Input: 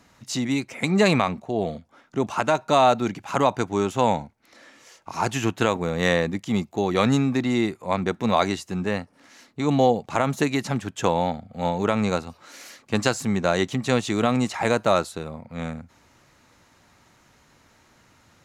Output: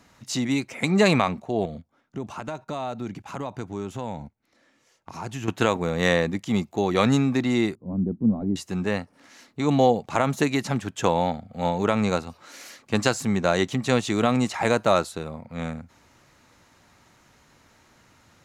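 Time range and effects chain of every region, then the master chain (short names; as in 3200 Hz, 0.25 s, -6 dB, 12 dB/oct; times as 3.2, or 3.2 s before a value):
1.65–5.48 gate -44 dBFS, range -14 dB + compressor 2:1, threshold -42 dBFS + low shelf 310 Hz +8.5 dB
7.75–8.56 CVSD 64 kbps + synth low-pass 240 Hz, resonance Q 1.7
whole clip: dry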